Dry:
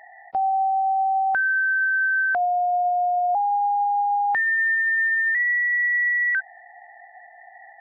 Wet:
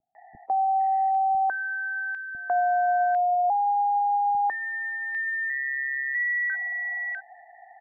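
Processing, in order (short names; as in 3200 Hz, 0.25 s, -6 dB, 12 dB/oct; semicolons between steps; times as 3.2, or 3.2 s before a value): high shelf 2000 Hz -8.5 dB; notch 1400 Hz, Q 6.3; three bands offset in time lows, mids, highs 0.15/0.8 s, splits 280/1800 Hz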